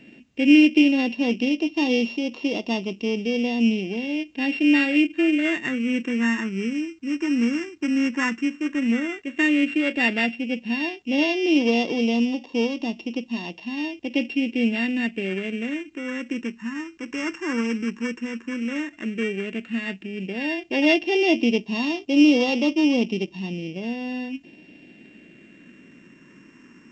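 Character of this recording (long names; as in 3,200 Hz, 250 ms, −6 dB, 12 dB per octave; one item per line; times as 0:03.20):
a buzz of ramps at a fixed pitch in blocks of 16 samples
phaser sweep stages 4, 0.1 Hz, lowest notch 670–1,500 Hz
A-law companding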